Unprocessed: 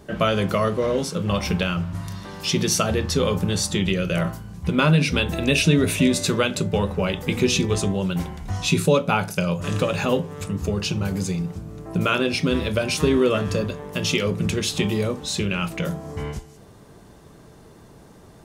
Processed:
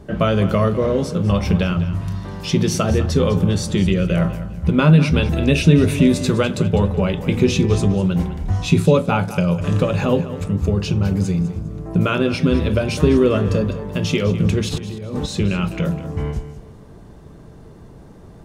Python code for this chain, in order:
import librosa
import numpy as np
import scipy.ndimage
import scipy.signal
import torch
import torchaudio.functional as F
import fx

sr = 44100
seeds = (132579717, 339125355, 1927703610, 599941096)

y = fx.over_compress(x, sr, threshold_db=-33.0, ratio=-1.0, at=(14.68, 15.26), fade=0.02)
y = fx.tilt_eq(y, sr, slope=-2.0)
y = fx.echo_feedback(y, sr, ms=203, feedback_pct=30, wet_db=-14.0)
y = F.gain(torch.from_numpy(y), 1.0).numpy()